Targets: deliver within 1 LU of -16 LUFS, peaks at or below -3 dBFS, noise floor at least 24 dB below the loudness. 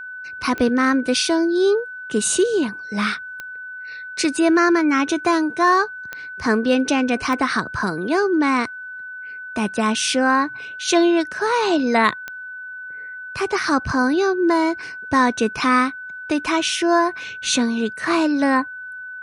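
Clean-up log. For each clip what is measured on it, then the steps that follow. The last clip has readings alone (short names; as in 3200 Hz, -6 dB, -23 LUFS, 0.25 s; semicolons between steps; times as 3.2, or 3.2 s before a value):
clicks 5; steady tone 1500 Hz; tone level -31 dBFS; loudness -19.5 LUFS; peak -4.0 dBFS; loudness target -16.0 LUFS
-> de-click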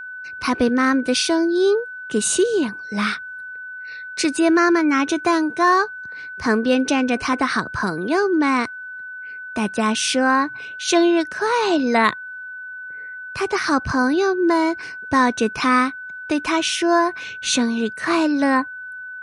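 clicks 0; steady tone 1500 Hz; tone level -31 dBFS
-> notch 1500 Hz, Q 30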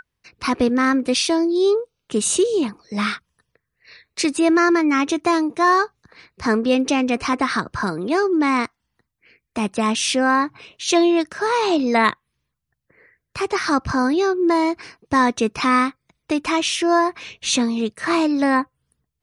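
steady tone none; loudness -19.5 LUFS; peak -5.0 dBFS; loudness target -16.0 LUFS
-> gain +3.5 dB; limiter -3 dBFS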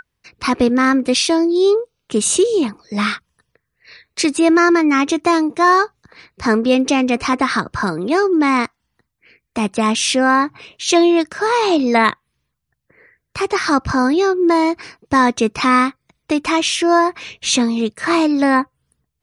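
loudness -16.0 LUFS; peak -3.0 dBFS; noise floor -75 dBFS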